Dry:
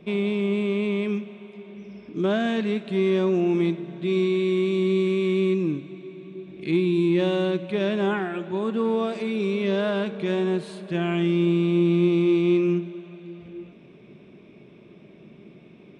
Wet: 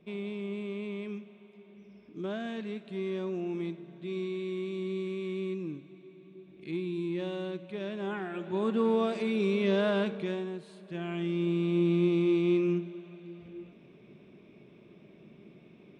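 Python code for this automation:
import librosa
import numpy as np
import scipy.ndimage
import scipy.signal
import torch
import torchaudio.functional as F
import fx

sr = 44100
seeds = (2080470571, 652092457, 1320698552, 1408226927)

y = fx.gain(x, sr, db=fx.line((7.99, -12.5), (8.64, -3.0), (10.1, -3.0), (10.53, -14.5), (11.83, -6.0)))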